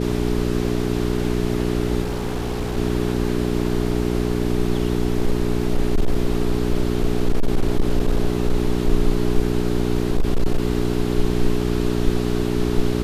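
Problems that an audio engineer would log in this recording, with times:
hum 60 Hz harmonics 7 -22 dBFS
2.02–2.78 clipped -20 dBFS
5.1–8.89 clipped -12 dBFS
10.02–10.63 clipped -12.5 dBFS

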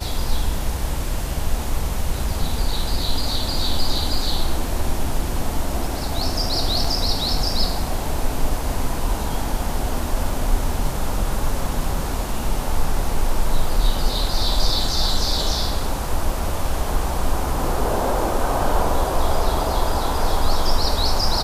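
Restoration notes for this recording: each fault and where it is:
6.84 gap 4.1 ms

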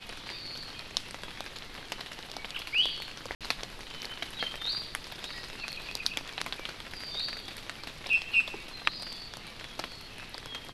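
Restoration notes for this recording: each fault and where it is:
3.35–3.41 gap 57 ms

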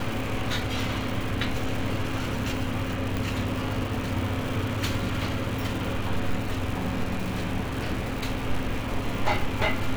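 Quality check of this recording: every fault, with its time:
crackle 470/s -32 dBFS
3.17 pop

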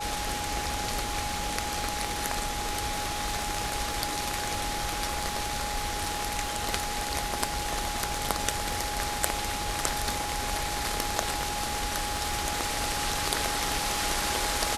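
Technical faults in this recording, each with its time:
crackle 46/s -36 dBFS
tone 830 Hz -34 dBFS

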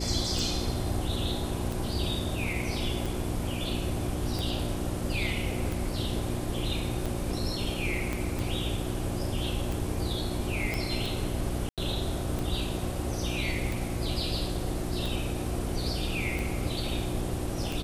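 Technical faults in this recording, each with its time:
hum 60 Hz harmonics 6 -35 dBFS
tick 45 rpm
8.13 pop
10.74 pop
11.69–11.78 gap 87 ms

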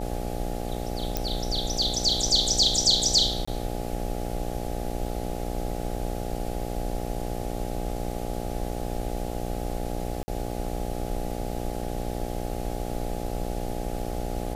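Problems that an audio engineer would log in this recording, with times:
buzz 60 Hz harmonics 14 -33 dBFS
1.17 pop -11 dBFS
3.45–3.48 gap 25 ms
10.23–10.28 gap 50 ms

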